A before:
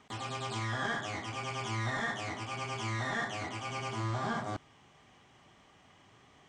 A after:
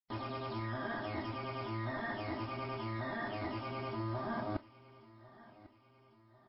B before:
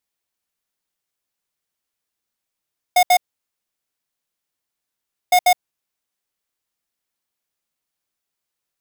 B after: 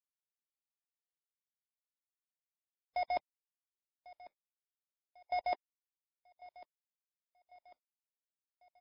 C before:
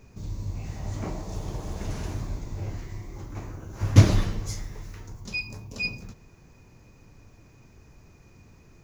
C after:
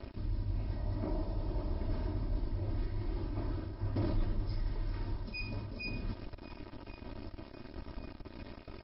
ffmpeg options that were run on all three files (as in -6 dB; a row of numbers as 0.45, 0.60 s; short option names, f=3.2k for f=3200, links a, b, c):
-af "aresample=16000,acrusher=bits=7:mix=0:aa=0.000001,aresample=44100,volume=19.5dB,asoftclip=hard,volume=-19.5dB,areverse,acompressor=threshold=-40dB:ratio=4,areverse,equalizer=f=3.2k:t=o:w=2.5:g=-11.5,aecho=1:1:3.2:0.61,aecho=1:1:1097|2194|3291|4388:0.1|0.049|0.024|0.0118,volume=6dB" -ar 12000 -c:a libmp3lame -b:a 24k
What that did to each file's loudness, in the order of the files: -4.0, -20.0, -11.0 LU